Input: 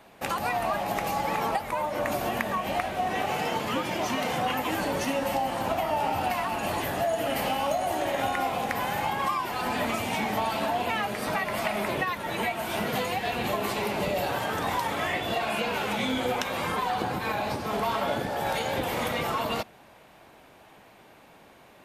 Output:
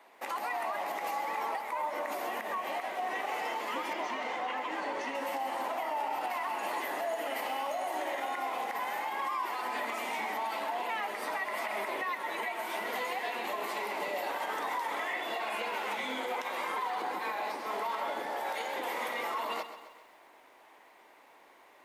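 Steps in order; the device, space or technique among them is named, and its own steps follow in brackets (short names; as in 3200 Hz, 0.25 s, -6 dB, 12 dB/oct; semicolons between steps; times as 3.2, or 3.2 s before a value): laptop speaker (HPF 290 Hz 24 dB/oct; bell 980 Hz +7 dB 0.51 oct; bell 2000 Hz +9 dB 0.24 oct; limiter -18.5 dBFS, peak gain reduction 13 dB); 3.93–5.15 air absorption 88 m; lo-fi delay 0.131 s, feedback 55%, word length 9-bit, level -11.5 dB; gain -7.5 dB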